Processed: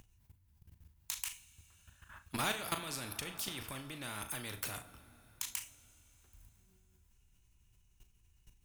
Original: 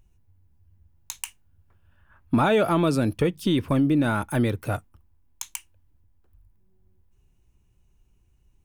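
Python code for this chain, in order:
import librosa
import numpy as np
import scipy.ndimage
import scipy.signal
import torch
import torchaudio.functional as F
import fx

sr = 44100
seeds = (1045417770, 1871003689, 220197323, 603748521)

y = fx.tone_stack(x, sr, knobs='5-5-5')
y = fx.level_steps(y, sr, step_db=18)
y = fx.doubler(y, sr, ms=38.0, db=-12.0)
y = fx.rev_double_slope(y, sr, seeds[0], early_s=0.38, late_s=4.2, knee_db=-22, drr_db=12.5)
y = fx.spectral_comp(y, sr, ratio=2.0)
y = F.gain(torch.from_numpy(y), 7.5).numpy()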